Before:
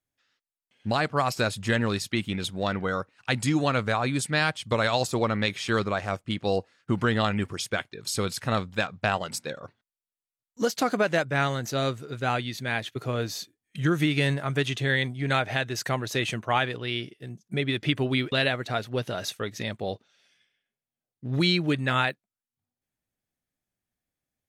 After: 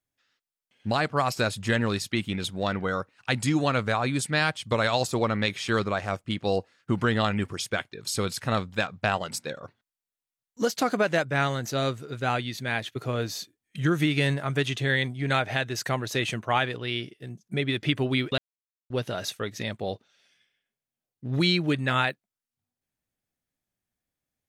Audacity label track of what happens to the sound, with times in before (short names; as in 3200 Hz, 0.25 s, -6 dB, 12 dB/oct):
18.380000	18.900000	mute